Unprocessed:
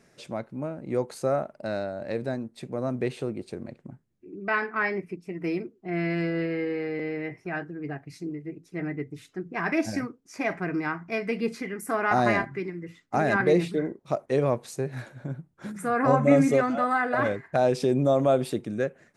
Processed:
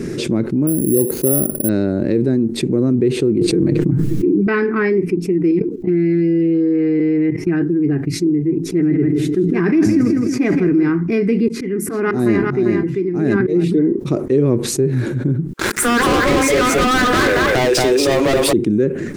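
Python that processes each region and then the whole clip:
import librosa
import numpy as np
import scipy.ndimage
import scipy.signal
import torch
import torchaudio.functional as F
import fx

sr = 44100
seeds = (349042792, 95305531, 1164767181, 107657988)

y = fx.chain(x, sr, fx.curve_eq(hz=(560.0, 1800.0, 9800.0), db=(0, -10, -26)),
    fx.resample_bad(factor=4, down='none', up='zero_stuff'), at=(0.67, 1.69))
y = fx.chain(y, sr, fx.comb(ms=6.4, depth=0.93),
    fx.env_flatten(amount_pct=100), at=(3.41, 4.47))
y = fx.chain(y, sr, fx.comb(ms=6.4, depth=0.91),
    fx.level_steps(step_db=16), at=(5.51, 7.62))
y = fx.chain(y, sr, fx.echo_feedback(ms=163, feedback_pct=29, wet_db=-9.0),
    fx.sustainer(db_per_s=56.0), at=(8.66, 10.9))
y = fx.chain(y, sr, fx.auto_swell(attack_ms=190.0),
    fx.echo_single(ms=393, db=-4.5),
    fx.upward_expand(threshold_db=-40.0, expansion=1.5), at=(11.48, 13.64))
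y = fx.chain(y, sr, fx.highpass(hz=670.0, slope=24),
    fx.echo_single(ms=230, db=-3.5),
    fx.leveller(passes=5), at=(15.53, 18.53))
y = fx.low_shelf_res(y, sr, hz=490.0, db=10.5, q=3.0)
y = fx.env_flatten(y, sr, amount_pct=70)
y = y * 10.0 ** (-6.5 / 20.0)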